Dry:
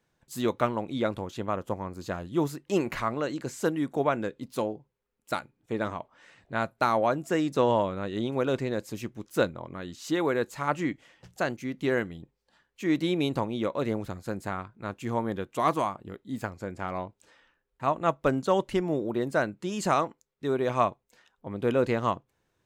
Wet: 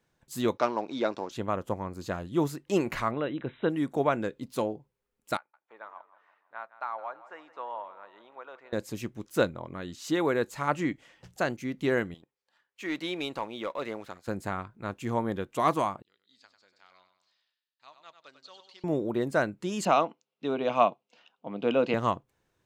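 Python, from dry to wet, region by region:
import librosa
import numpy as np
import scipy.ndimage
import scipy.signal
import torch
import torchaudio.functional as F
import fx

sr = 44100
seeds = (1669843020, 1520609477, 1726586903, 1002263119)

y = fx.chain(x, sr, fx.leveller(passes=1),
    fx.cabinet(low_hz=360.0, low_slope=12, high_hz=6100.0, hz=(520.0, 1300.0, 2000.0, 3200.0, 5500.0), db=(-4, -4, -5, -8, 8)), at=(0.57, 1.31))
y = fx.chain(y, sr, fx.dynamic_eq(hz=1100.0, q=0.82, threshold_db=-38.0, ratio=4.0, max_db=-3),
    fx.brickwall_lowpass(high_hz=4000.0), at=(3.11, 3.7))
y = fx.chain(y, sr, fx.ladder_bandpass(hz=1200.0, resonance_pct=30),
    fx.echo_feedback(ms=164, feedback_pct=50, wet_db=-16.0), at=(5.37, 8.73))
y = fx.chain(y, sr, fx.highpass(hz=1200.0, slope=6),
    fx.high_shelf(hz=5100.0, db=-11.0),
    fx.leveller(passes=1), at=(12.14, 14.28))
y = fx.chain(y, sr, fx.bandpass_q(hz=4400.0, q=4.7),
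    fx.air_absorb(metres=60.0),
    fx.echo_feedback(ms=97, feedback_pct=46, wet_db=-9.0), at=(16.02, 18.84))
y = fx.chain(y, sr, fx.cabinet(low_hz=170.0, low_slope=24, high_hz=5400.0, hz=(700.0, 1800.0, 2800.0), db=(5, -8, 9)),
    fx.notch(hz=380.0, q=8.1), at=(19.85, 21.94))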